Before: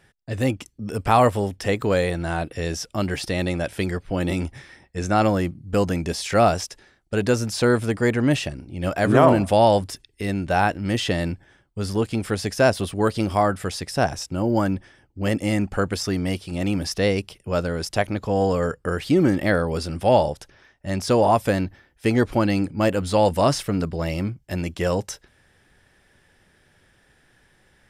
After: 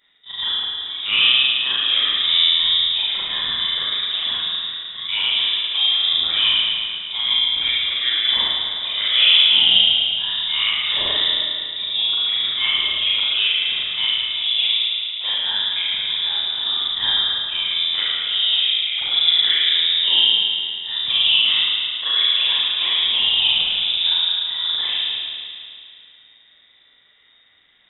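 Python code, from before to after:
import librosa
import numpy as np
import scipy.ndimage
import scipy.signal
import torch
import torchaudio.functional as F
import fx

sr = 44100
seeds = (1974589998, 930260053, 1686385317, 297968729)

y = fx.frame_reverse(x, sr, frame_ms=96.0)
y = fx.rev_spring(y, sr, rt60_s=2.4, pass_ms=(36, 54), chirp_ms=30, drr_db=-6.0)
y = fx.freq_invert(y, sr, carrier_hz=3700)
y = F.gain(torch.from_numpy(y), -2.0).numpy()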